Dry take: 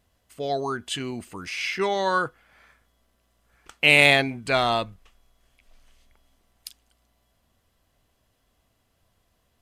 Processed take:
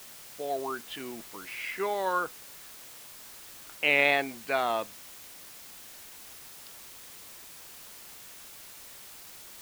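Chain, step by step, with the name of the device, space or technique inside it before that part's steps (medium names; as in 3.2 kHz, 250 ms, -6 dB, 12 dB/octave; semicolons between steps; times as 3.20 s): wax cylinder (band-pass 300–2500 Hz; wow and flutter; white noise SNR 13 dB); trim -5 dB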